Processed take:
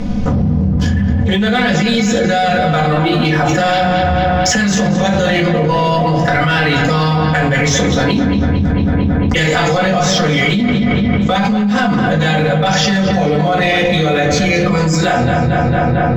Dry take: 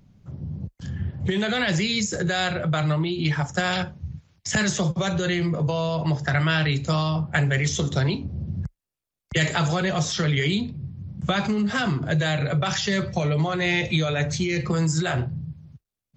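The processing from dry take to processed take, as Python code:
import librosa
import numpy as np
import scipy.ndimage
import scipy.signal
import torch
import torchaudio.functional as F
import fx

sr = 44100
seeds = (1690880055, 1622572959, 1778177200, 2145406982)

p1 = scipy.signal.sosfilt(scipy.signal.butter(2, 7100.0, 'lowpass', fs=sr, output='sos'), x)
p2 = fx.peak_eq(p1, sr, hz=580.0, db=2.5, octaves=1.9)
p3 = p2 + 0.59 * np.pad(p2, (int(4.0 * sr / 1000.0), 0))[:len(p2)]
p4 = fx.leveller(p3, sr, passes=1)
p5 = p4 + fx.echo_filtered(p4, sr, ms=225, feedback_pct=62, hz=3900.0, wet_db=-9, dry=0)
p6 = fx.room_shoebox(p5, sr, seeds[0], volume_m3=170.0, walls='furnished', distance_m=1.9)
p7 = fx.env_flatten(p6, sr, amount_pct=100)
y = p7 * 10.0 ** (-7.5 / 20.0)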